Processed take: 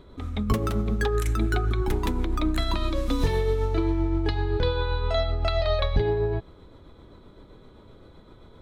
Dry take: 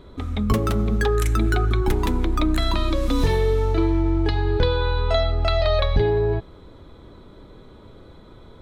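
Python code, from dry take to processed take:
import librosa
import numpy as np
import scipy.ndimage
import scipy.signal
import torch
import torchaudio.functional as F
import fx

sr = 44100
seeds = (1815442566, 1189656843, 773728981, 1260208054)

y = x * (1.0 - 0.32 / 2.0 + 0.32 / 2.0 * np.cos(2.0 * np.pi * 7.7 * (np.arange(len(x)) / sr)))
y = F.gain(torch.from_numpy(y), -3.0).numpy()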